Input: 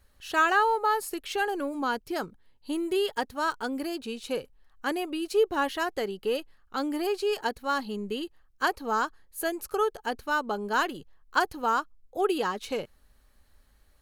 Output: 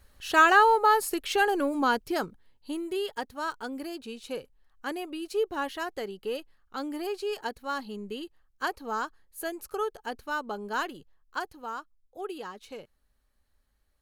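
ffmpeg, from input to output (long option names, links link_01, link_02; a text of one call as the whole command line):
ffmpeg -i in.wav -af "volume=4dB,afade=type=out:start_time=1.88:duration=0.96:silence=0.375837,afade=type=out:start_time=10.8:duration=0.79:silence=0.473151" out.wav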